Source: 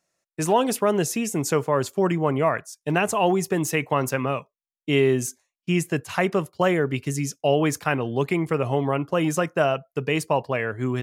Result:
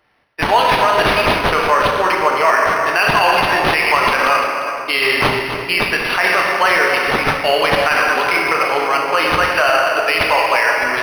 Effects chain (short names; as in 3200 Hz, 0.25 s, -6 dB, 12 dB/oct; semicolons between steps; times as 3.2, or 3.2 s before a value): regenerating reverse delay 0.174 s, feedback 45%, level -10.5 dB; HPF 1300 Hz 12 dB/oct; shoebox room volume 130 m³, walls hard, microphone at 0.43 m; maximiser +18.5 dB; decimation joined by straight lines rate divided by 6×; gain -1 dB